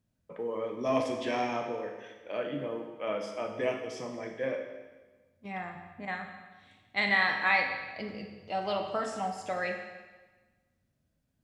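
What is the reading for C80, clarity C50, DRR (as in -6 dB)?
7.0 dB, 5.0 dB, 3.0 dB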